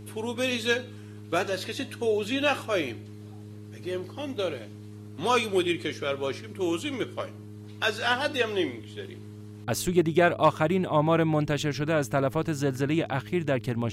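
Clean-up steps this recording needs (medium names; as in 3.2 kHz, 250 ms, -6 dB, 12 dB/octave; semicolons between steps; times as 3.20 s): clip repair -10.5 dBFS; de-hum 104.6 Hz, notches 4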